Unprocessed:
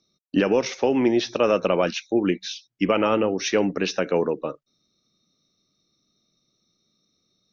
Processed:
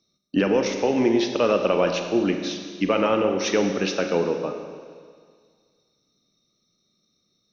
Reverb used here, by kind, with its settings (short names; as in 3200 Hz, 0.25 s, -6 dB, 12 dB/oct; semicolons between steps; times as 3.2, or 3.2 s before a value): Schroeder reverb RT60 1.9 s, combs from 31 ms, DRR 5 dB; gain -1 dB